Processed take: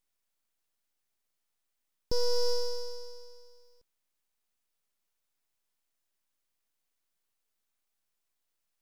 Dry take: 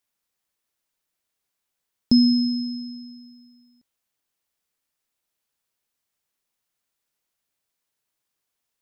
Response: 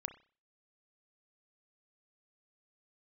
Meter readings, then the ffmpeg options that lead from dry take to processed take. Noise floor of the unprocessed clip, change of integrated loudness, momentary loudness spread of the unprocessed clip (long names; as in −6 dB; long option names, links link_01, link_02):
−82 dBFS, −12.5 dB, 19 LU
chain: -af "bandreject=frequency=4800:width=6.9,alimiter=limit=-19dB:level=0:latency=1,aeval=exprs='abs(val(0))':channel_layout=same"